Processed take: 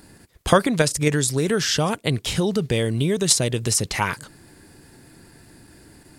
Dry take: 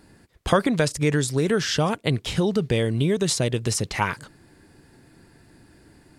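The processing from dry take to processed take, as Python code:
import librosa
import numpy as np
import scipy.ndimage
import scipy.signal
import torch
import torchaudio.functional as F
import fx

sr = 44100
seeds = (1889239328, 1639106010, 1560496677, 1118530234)

p1 = fx.high_shelf(x, sr, hz=6100.0, db=9.5)
p2 = fx.level_steps(p1, sr, step_db=18)
p3 = p1 + F.gain(torch.from_numpy(p2), -1.0).numpy()
y = F.gain(torch.from_numpy(p3), -1.0).numpy()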